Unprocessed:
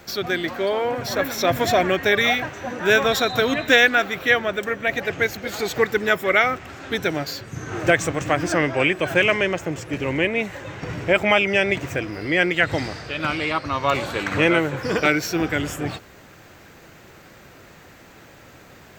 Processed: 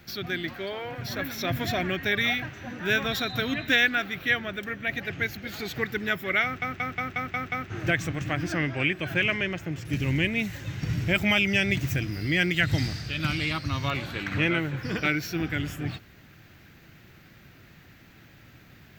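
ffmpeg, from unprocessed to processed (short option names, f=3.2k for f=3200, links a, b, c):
-filter_complex "[0:a]asettb=1/sr,asplit=3[a][b][c];[a]atrim=end=0.534[d];[b]atrim=start=0.53:end=1.01,asetpts=PTS-STARTPTS,afade=t=in:d=0.004:c=qsin,afade=t=out:st=0.476:d=0.004:c=qsin,equalizer=f=240:t=o:w=0.35:g=-10.5[e];[c]atrim=start=1.006[f];[d][e]acrossfade=d=0.004:c1=hsin:c2=qsin[g];[g][f]acrossfade=d=0.004:c1=qsin:c2=hsin,asettb=1/sr,asplit=3[h][i][j];[h]atrim=end=9.854[k];[i]atrim=start=9.85:end=13.89,asetpts=PTS-STARTPTS,afade=t=in:d=0.004:c=qsin,afade=t=out:st=4.036:d=0.004:c=qsin,bass=f=250:g=6,treble=f=4k:g=13[l];[j]atrim=start=13.886[m];[k][l]acrossfade=d=0.004:c1=hsin:c2=qsin[n];[n][m]acrossfade=d=0.004:c1=qsin:c2=hsin,asplit=8[o][p][q][r][s][t][u][v];[o]atrim=end=6.622[w];[p]atrim=start=6.438:end=6.622[x];[q]atrim=start=6.438:end=6.622[y];[r]atrim=start=6.438:end=6.622[z];[s]atrim=start=6.438:end=6.622[aa];[t]atrim=start=6.438:end=6.622[ab];[u]atrim=start=6.438:end=6.622[ac];[v]atrim=start=7.698[ad];[w][x]acrossfade=d=0.004:c1=hsin:c2=hsin[ae];[ae][y]acrossfade=d=0.004:c1=hsin:c2=hsin[af];[af][z]acrossfade=d=0.004:c1=hsin:c2=hsin[ag];[ag][aa]acrossfade=d=0.004:c1=hsin:c2=hsin[ah];[ah][ab]acrossfade=d=0.004:c1=hsin:c2=hsin[ai];[ai][ac]acrossfade=d=0.004:c1=hsin:c2=hsin[aj];[aj][ad]acrossfade=d=0.004:c1=hsin:c2=hsin,equalizer=f=125:t=o:w=1:g=3,equalizer=f=500:t=o:w=1:g=-10,equalizer=f=1k:t=o:w=1:g=-8,equalizer=f=8k:t=o:w=1:g=-11,volume=-3dB"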